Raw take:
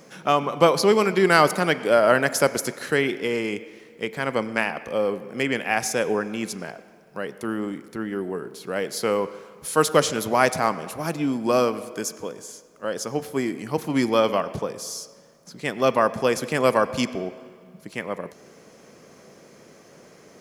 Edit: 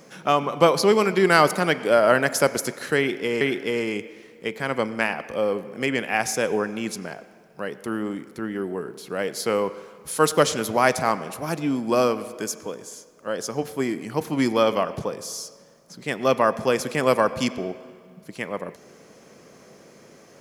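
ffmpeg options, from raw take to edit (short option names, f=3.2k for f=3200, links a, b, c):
-filter_complex "[0:a]asplit=2[a][b];[a]atrim=end=3.412[c];[b]atrim=start=2.978[d];[c][d]acrossfade=d=0.004:c1=hsin:c2=hsin"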